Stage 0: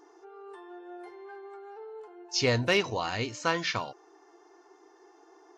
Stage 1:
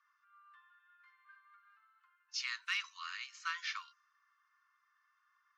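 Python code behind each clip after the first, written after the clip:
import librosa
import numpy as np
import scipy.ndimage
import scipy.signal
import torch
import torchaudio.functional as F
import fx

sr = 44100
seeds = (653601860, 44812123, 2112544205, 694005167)

y = scipy.signal.sosfilt(scipy.signal.butter(16, 1100.0, 'highpass', fs=sr, output='sos'), x)
y = fx.env_lowpass(y, sr, base_hz=2900.0, full_db=-30.5)
y = fx.tilt_eq(y, sr, slope=-1.5)
y = F.gain(torch.from_numpy(y), -6.5).numpy()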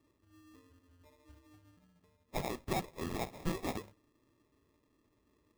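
y = fx.rider(x, sr, range_db=10, speed_s=0.5)
y = fx.sample_hold(y, sr, seeds[0], rate_hz=1500.0, jitter_pct=0)
y = F.gain(torch.from_numpy(y), 4.0).numpy()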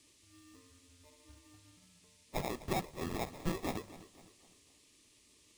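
y = fx.dmg_noise_band(x, sr, seeds[1], low_hz=2100.0, high_hz=10000.0, level_db=-67.0)
y = fx.echo_feedback(y, sr, ms=253, feedback_pct=43, wet_db=-16.5)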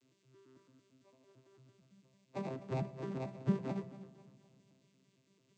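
y = fx.vocoder_arp(x, sr, chord='bare fifth', root=48, every_ms=112)
y = fx.comb_fb(y, sr, f0_hz=330.0, decay_s=0.45, harmonics='all', damping=0.0, mix_pct=70)
y = fx.room_shoebox(y, sr, seeds[2], volume_m3=2800.0, walls='mixed', distance_m=0.34)
y = F.gain(torch.from_numpy(y), 11.0).numpy()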